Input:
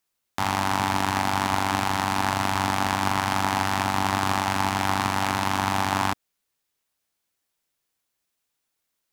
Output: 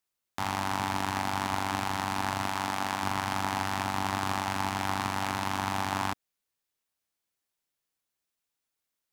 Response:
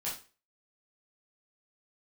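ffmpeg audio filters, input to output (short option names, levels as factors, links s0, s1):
-filter_complex "[0:a]asettb=1/sr,asplit=3[s0][s1][s2];[s0]atrim=end=2.484[s3];[s1]atrim=start=2.48:end=3.03,asetpts=PTS-STARTPTS,afade=t=in:d=0.004:c=qsin,afade=t=out:st=0.546:d=0.004:c=qsin,lowshelf=f=120:g=-10.5[s4];[s2]atrim=start=3.026[s5];[s3][s4]acrossfade=d=0.004:c1=hsin:c2=qsin[s6];[s6][s5]acrossfade=d=0.004:c1=qsin:c2=hsin,volume=0.473"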